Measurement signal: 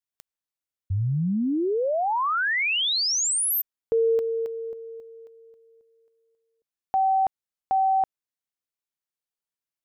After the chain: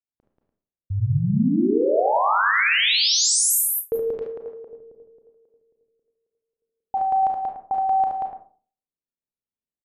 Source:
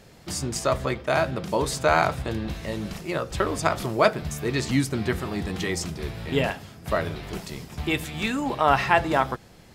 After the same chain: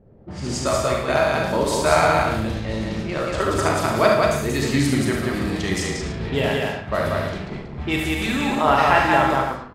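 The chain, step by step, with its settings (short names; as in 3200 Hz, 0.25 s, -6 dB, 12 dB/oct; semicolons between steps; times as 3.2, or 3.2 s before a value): loudspeakers at several distances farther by 25 m -6 dB, 63 m -2 dB, 100 m -10 dB; Schroeder reverb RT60 0.48 s, combs from 28 ms, DRR 2.5 dB; low-pass opened by the level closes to 450 Hz, open at -19 dBFS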